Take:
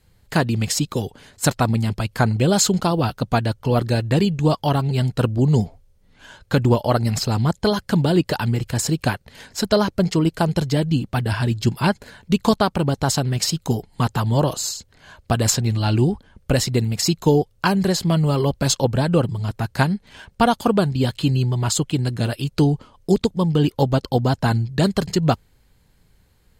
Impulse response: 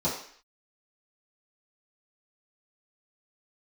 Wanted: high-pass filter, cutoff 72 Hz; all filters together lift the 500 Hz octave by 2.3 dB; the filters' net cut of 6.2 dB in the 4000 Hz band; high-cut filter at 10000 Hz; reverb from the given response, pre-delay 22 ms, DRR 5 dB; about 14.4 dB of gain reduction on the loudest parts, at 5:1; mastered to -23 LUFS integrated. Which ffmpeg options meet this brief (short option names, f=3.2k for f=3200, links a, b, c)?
-filter_complex "[0:a]highpass=72,lowpass=10k,equalizer=f=500:t=o:g=3,equalizer=f=4k:t=o:g=-8,acompressor=threshold=-28dB:ratio=5,asplit=2[a][b];[1:a]atrim=start_sample=2205,adelay=22[c];[b][c]afir=irnorm=-1:irlink=0,volume=-15dB[d];[a][d]amix=inputs=2:normalize=0,volume=6dB"